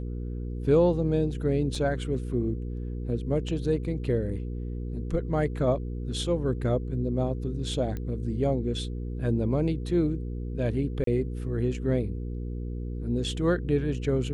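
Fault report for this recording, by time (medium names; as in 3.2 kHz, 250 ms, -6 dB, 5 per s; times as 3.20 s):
hum 60 Hz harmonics 8 -33 dBFS
1.75 s: dropout 3.2 ms
7.97 s: pop -22 dBFS
11.04–11.07 s: dropout 33 ms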